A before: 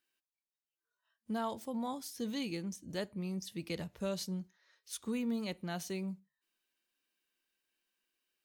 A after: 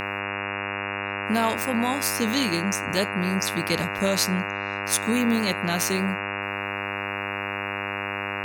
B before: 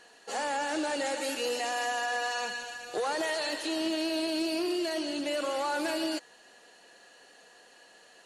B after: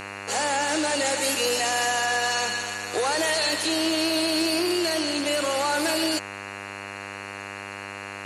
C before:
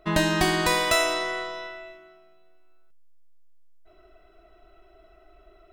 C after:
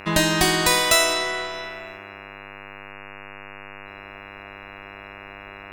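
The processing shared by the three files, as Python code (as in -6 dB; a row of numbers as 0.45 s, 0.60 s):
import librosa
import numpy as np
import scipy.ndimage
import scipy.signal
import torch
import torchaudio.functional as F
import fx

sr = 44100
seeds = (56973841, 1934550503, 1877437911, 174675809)

y = fx.high_shelf(x, sr, hz=3700.0, db=9.0)
y = fx.dmg_buzz(y, sr, base_hz=100.0, harmonics=28, level_db=-42.0, tilt_db=0, odd_only=False)
y = y * 10.0 ** (-26 / 20.0) / np.sqrt(np.mean(np.square(y)))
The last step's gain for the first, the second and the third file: +12.0 dB, +5.0 dB, +1.5 dB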